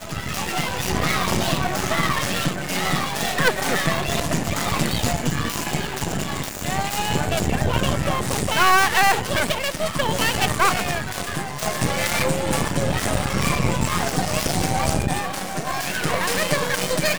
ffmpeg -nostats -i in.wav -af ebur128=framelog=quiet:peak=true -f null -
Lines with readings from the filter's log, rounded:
Integrated loudness:
  I:         -22.0 LUFS
  Threshold: -32.0 LUFS
Loudness range:
  LRA:         3.9 LU
  Threshold: -41.8 LUFS
  LRA low:   -23.6 LUFS
  LRA high:  -19.8 LUFS
True peak:
  Peak:       -2.1 dBFS